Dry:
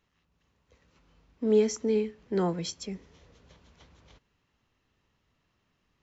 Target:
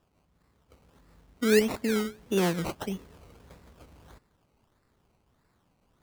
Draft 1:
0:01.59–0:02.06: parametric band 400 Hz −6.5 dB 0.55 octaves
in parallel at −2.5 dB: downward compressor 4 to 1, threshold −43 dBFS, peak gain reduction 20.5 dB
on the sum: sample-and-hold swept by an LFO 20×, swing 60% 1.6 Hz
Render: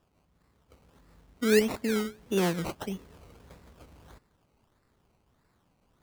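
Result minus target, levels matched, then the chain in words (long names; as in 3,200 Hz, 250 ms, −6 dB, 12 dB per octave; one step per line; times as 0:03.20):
downward compressor: peak gain reduction +6 dB
0:01.59–0:02.06: parametric band 400 Hz −6.5 dB 0.55 octaves
in parallel at −2.5 dB: downward compressor 4 to 1, threshold −35 dBFS, peak gain reduction 14.5 dB
on the sum: sample-and-hold swept by an LFO 20×, swing 60% 1.6 Hz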